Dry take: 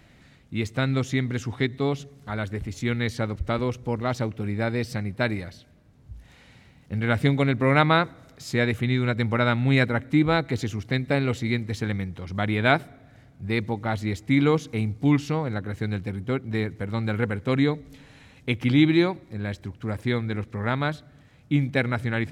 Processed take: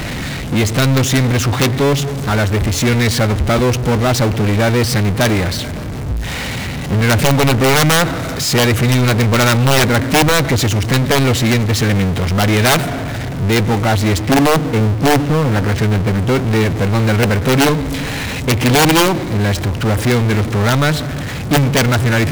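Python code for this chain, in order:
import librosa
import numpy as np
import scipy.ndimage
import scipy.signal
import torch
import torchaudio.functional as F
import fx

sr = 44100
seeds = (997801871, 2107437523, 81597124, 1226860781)

y = fx.env_lowpass_down(x, sr, base_hz=830.0, full_db=-20.0, at=(14.17, 16.17), fade=0.02)
y = (np.mod(10.0 ** (13.5 / 20.0) * y + 1.0, 2.0) - 1.0) / 10.0 ** (13.5 / 20.0)
y = fx.power_curve(y, sr, exponent=0.35)
y = F.gain(torch.from_numpy(y), 6.0).numpy()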